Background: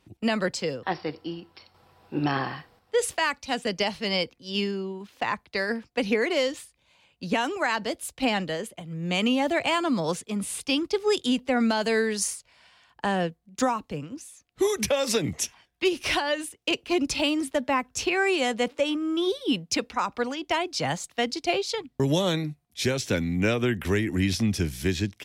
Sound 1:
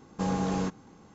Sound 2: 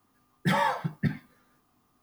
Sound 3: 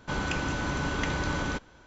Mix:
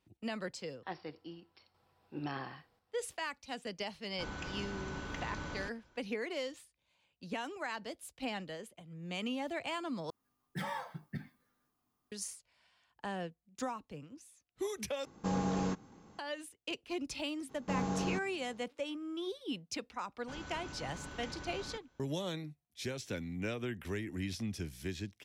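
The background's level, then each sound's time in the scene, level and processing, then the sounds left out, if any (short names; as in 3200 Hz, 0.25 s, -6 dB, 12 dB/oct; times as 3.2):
background -14 dB
4.11 add 3 -12.5 dB
10.1 replace with 2 -14.5 dB + high shelf 3900 Hz +3.5 dB
15.05 replace with 1 -4.5 dB
17.49 add 1 -6 dB
20.2 add 3 -17 dB + high shelf 6600 Hz +7 dB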